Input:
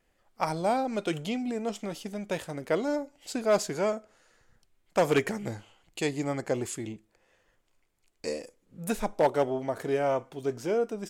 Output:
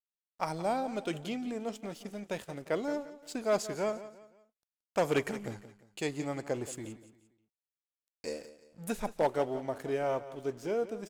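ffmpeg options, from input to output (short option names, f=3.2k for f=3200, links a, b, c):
-af "aeval=exprs='sgn(val(0))*max(abs(val(0))-0.00251,0)':c=same,aecho=1:1:174|348|522:0.178|0.0658|0.0243,volume=-4.5dB"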